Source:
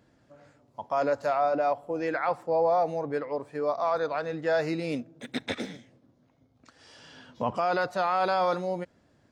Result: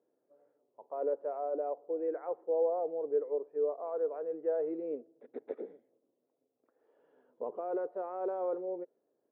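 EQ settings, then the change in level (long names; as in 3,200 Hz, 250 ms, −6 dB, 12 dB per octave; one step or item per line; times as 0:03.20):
dynamic equaliser 380 Hz, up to +7 dB, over −42 dBFS, Q 1.4
four-pole ladder band-pass 480 Hz, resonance 60%
high-frequency loss of the air 260 metres
−1.5 dB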